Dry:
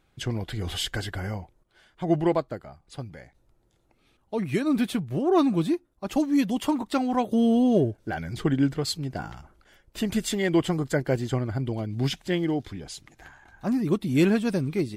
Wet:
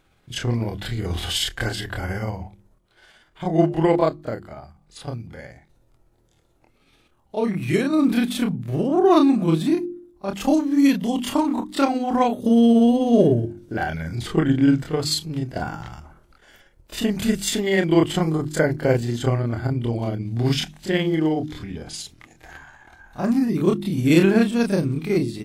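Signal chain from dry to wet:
mains-hum notches 50/100/150/200/250/300/350 Hz
time stretch by overlap-add 1.7×, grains 124 ms
level +6.5 dB

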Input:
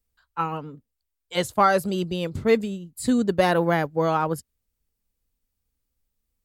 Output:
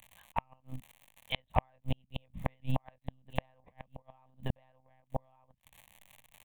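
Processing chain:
single-tap delay 1,183 ms −6.5 dB
0:01.92–0:04.09: gate pattern ".xxx.xx.xxx.x.xx" 146 BPM −12 dB
one-pitch LPC vocoder at 8 kHz 130 Hz
downward compressor 10 to 1, threshold −24 dBFS, peak gain reduction 13 dB
surface crackle 140 per second −44 dBFS
gate with flip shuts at −20 dBFS, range −39 dB
phaser with its sweep stopped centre 1,400 Hz, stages 6
level +7.5 dB

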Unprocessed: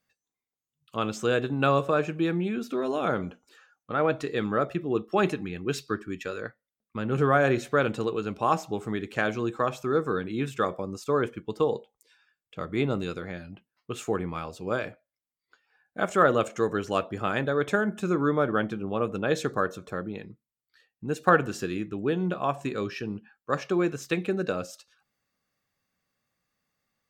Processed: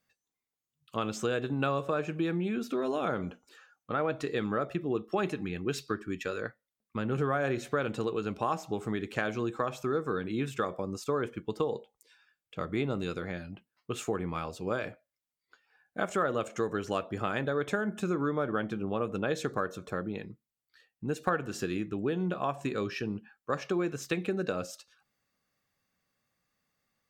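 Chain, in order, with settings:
downward compressor 3 to 1, threshold −28 dBFS, peak gain reduction 10.5 dB

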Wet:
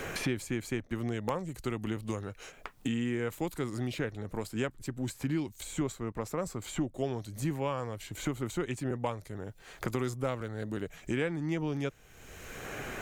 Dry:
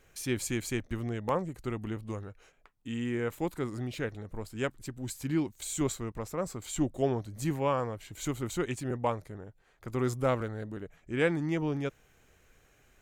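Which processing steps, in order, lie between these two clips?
multiband upward and downward compressor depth 100%
level −2 dB

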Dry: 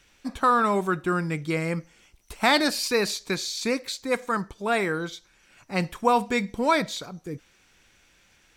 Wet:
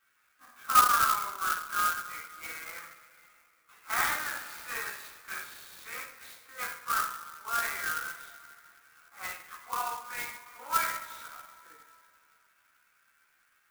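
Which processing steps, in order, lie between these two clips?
four-pole ladder band-pass 1,500 Hz, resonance 60%
time stretch by overlap-add 1.6×, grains 69 ms
coupled-rooms reverb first 0.52 s, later 3 s, from −18 dB, DRR −9.5 dB
converter with an unsteady clock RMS 0.052 ms
level −5.5 dB

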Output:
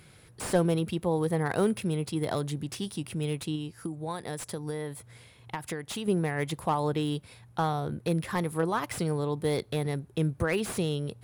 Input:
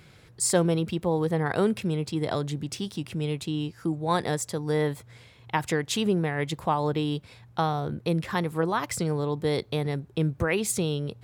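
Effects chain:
0:03.55–0:06.08: downward compressor 12 to 1, threshold −29 dBFS, peak gain reduction 11 dB
parametric band 10,000 Hz +15 dB 0.31 octaves
slew-rate limiting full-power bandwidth 130 Hz
level −2 dB

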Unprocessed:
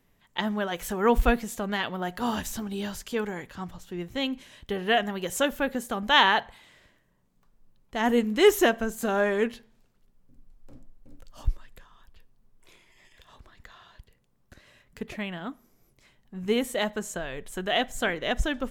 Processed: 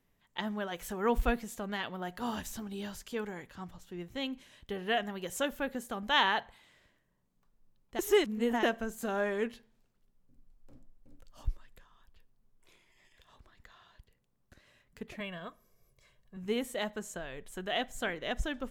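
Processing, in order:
0:07.99–0:08.63: reverse
0:15.20–0:16.37: comb filter 1.8 ms, depth 85%
level −7.5 dB

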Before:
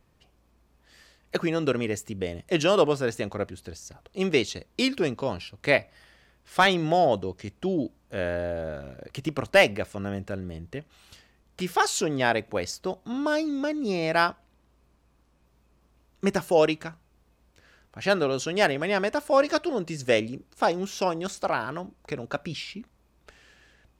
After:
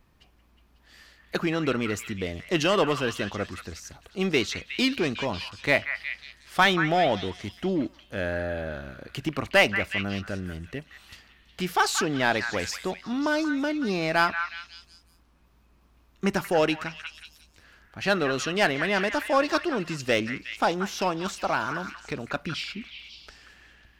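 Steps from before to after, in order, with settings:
octave-band graphic EQ 125/500/8,000 Hz −4/−6/−5 dB
in parallel at −5 dB: gain into a clipping stage and back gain 27.5 dB
on the sum: echo through a band-pass that steps 182 ms, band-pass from 1,600 Hz, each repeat 0.7 octaves, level −5 dB

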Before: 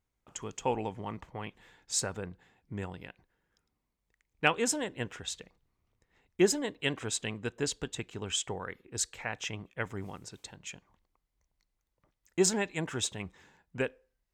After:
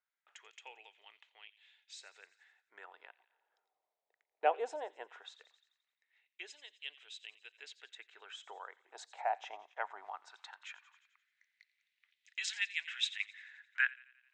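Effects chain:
loudspeaker in its box 240–9,100 Hz, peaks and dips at 240 Hz −4 dB, 520 Hz −8 dB, 1,100 Hz −6 dB, 3,800 Hz +7 dB
band-pass filter sweep 490 Hz → 1,800 Hz, 0:08.45–0:11.17
on a send: delay with a high-pass on its return 87 ms, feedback 53%, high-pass 2,200 Hz, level −16.5 dB
on the sum: auto-filter high-pass sine 0.18 Hz 660–2,900 Hz
one half of a high-frequency compander encoder only
level +4 dB

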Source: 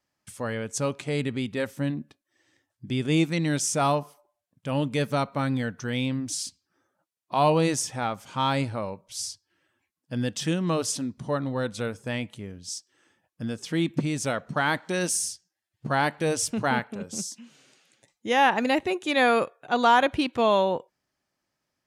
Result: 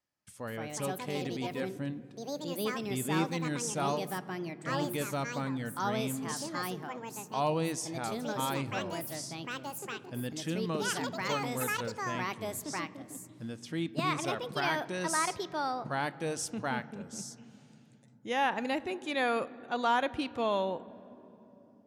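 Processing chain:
on a send at −17.5 dB: convolution reverb RT60 3.5 s, pre-delay 7 ms
on the sum: delay with pitch and tempo change per echo 272 ms, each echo +5 semitones, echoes 2
level −9 dB

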